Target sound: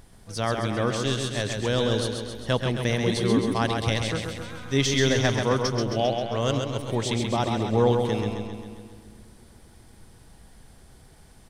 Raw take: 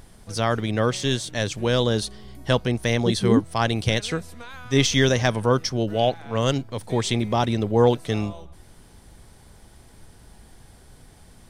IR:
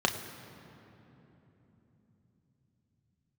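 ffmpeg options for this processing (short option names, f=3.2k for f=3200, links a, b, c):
-filter_complex "[0:a]aecho=1:1:133|266|399|532|665|798|931|1064:0.562|0.332|0.196|0.115|0.0681|0.0402|0.0237|0.014,asplit=2[a][b];[1:a]atrim=start_sample=2205,asetrate=66150,aresample=44100,adelay=107[c];[b][c]afir=irnorm=-1:irlink=0,volume=-23.5dB[d];[a][d]amix=inputs=2:normalize=0,volume=-4dB"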